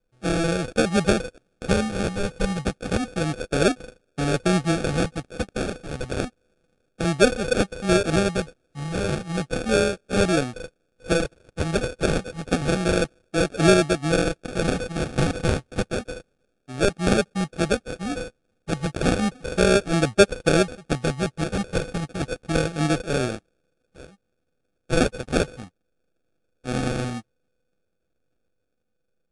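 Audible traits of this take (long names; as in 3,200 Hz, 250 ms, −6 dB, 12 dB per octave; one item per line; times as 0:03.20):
a buzz of ramps at a fixed pitch in blocks of 8 samples
phaser sweep stages 2, 0.31 Hz, lowest notch 380–1,600 Hz
aliases and images of a low sample rate 1,000 Hz, jitter 0%
MP3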